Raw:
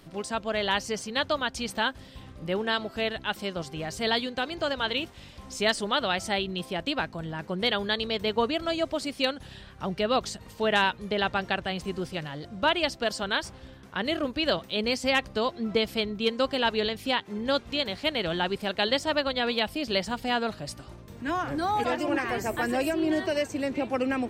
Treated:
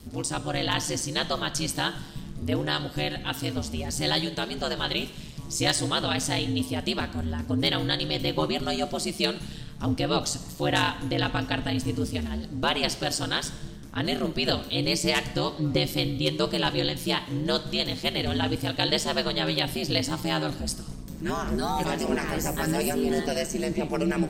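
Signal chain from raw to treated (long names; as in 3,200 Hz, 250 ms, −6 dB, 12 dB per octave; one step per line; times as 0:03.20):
bass and treble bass +13 dB, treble +13 dB
ring modulation 76 Hz
dense smooth reverb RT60 0.95 s, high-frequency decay 0.95×, DRR 11.5 dB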